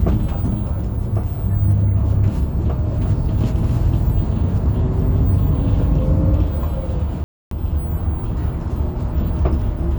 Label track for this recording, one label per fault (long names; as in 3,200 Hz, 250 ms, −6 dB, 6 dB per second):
7.240000	7.510000	drop-out 273 ms